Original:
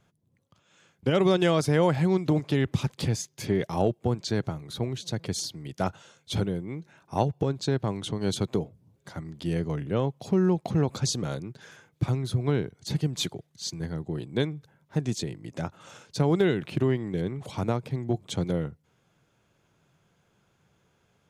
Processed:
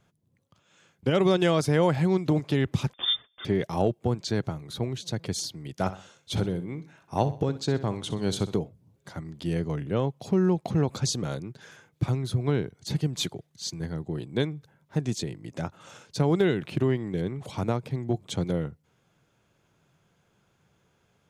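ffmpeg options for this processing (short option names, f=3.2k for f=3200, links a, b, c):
-filter_complex "[0:a]asettb=1/sr,asplit=3[a][b][c];[a]atrim=end=2.934[d];[b]atrim=start=2.93:end=3.45,asetpts=PTS-STARTPTS,afade=t=in:d=0.004:c=qsin,afade=t=out:st=0.516:d=0.004:c=qsin,lowpass=f=3.1k:t=q:w=0.5098,lowpass=f=3.1k:t=q:w=0.6013,lowpass=f=3.1k:t=q:w=0.9,lowpass=f=3.1k:t=q:w=2.563,afreqshift=-3700[e];[c]atrim=start=3.446[f];[d][e]acrossfade=d=0.004:c1=hsin:c2=qsin[g];[g][f]acrossfade=d=0.004:c1=qsin:c2=hsin,asettb=1/sr,asplit=3[h][i][j];[h]atrim=end=5.734[k];[i]atrim=start=5.73:end=8.59,asetpts=PTS-STARTPTS,afade=t=in:d=0.004:c=qsin,afade=t=out:st=2.856:d=0.004:c=qsin,aecho=1:1:63|126|189:0.2|0.0718|0.0259,atrim=end_sample=126126[l];[j]atrim=start=8.586[m];[k][l]acrossfade=d=0.004:c1=hsin:c2=qsin[n];[n][m]acrossfade=d=0.004:c1=qsin:c2=hsin"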